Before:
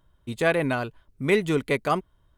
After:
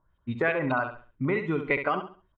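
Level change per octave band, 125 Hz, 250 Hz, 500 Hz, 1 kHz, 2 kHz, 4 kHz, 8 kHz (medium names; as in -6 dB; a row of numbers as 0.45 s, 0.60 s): -3.0 dB, -3.0 dB, -4.5 dB, -1.5 dB, -0.5 dB, -10.0 dB, under -30 dB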